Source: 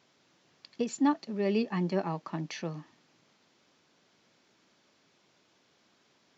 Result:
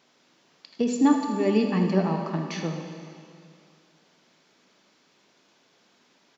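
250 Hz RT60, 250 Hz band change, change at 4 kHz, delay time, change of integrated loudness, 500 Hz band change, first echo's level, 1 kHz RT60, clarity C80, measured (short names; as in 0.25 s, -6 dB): 2.4 s, +8.0 dB, +5.0 dB, 78 ms, +7.0 dB, +6.0 dB, -10.5 dB, 2.4 s, 6.0 dB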